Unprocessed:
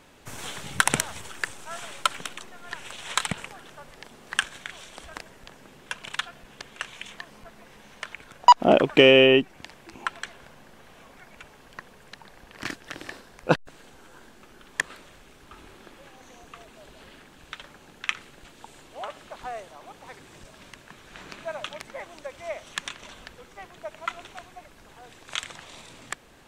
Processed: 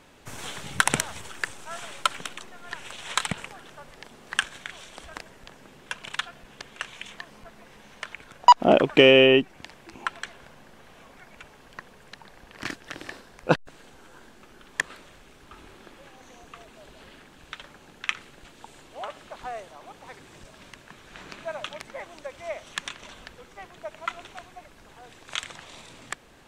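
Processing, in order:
high-shelf EQ 11,000 Hz −4 dB

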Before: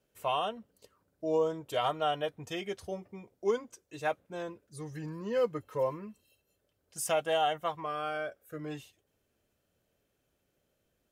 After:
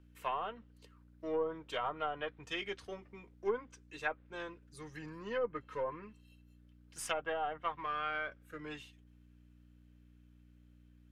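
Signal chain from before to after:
gain on one half-wave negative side −3 dB
mains hum 60 Hz, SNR 15 dB
three-way crossover with the lows and the highs turned down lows −16 dB, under 390 Hz, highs −12 dB, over 3,600 Hz
treble cut that deepens with the level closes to 1,000 Hz, closed at −28 dBFS
parametric band 650 Hz −13.5 dB 1.1 octaves
level +6 dB

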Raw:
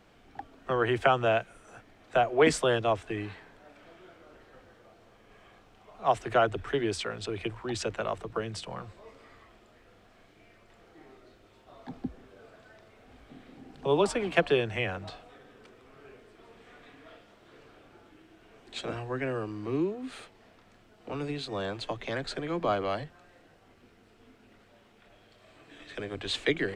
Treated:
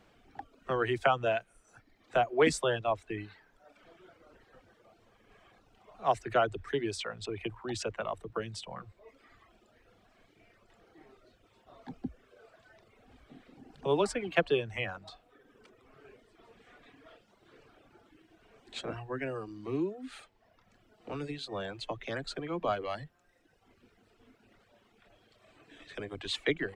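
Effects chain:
reverb reduction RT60 1.1 s
level −2.5 dB

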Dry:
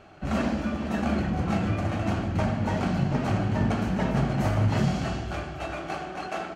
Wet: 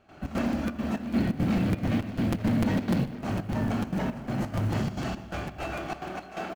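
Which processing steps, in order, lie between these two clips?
0:01.00–0:03.19: graphic EQ with 10 bands 125 Hz +8 dB, 250 Hz +9 dB, 500 Hz +5 dB, 1,000 Hz −3 dB, 2,000 Hz +7 dB, 4,000 Hz +8 dB
downward compressor 1.5 to 1, threshold −28 dBFS, peak gain reduction 6.5 dB
soft clipping −22 dBFS, distortion −12 dB
double-tracking delay 26 ms −10 dB
gate pattern ".xx.xxxx.xx." 172 BPM −12 dB
feedback echo with a low-pass in the loop 123 ms, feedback 68%, low-pass 3,600 Hz, level −16 dB
floating-point word with a short mantissa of 4 bits
parametric band 250 Hz +5 dB 0.33 octaves
regular buffer underruns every 0.15 s, samples 256, repeat, from 0:00.37

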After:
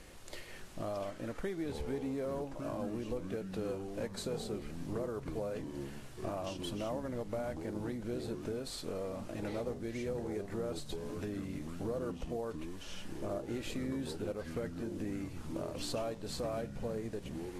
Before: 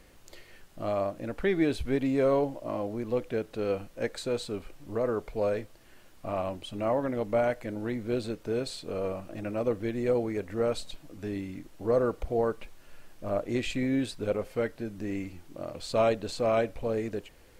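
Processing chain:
variable-slope delta modulation 64 kbit/s
dynamic equaliser 2,400 Hz, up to −5 dB, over −52 dBFS, Q 1.7
downward compressor 5 to 1, threshold −40 dBFS, peak gain reduction 17.5 dB
delay with pitch and tempo change per echo 559 ms, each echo −6 semitones, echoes 3, each echo −6 dB
level +2.5 dB
AAC 48 kbit/s 32,000 Hz

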